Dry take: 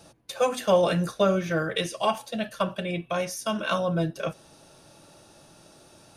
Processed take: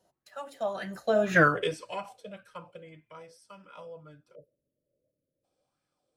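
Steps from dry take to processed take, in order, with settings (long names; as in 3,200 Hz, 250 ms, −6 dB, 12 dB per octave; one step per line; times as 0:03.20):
source passing by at 0:01.40, 35 m/s, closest 2.6 metres
time-frequency box erased 0:04.35–0:05.44, 650–9,900 Hz
auto-filter bell 1.8 Hz 490–1,800 Hz +11 dB
level +3.5 dB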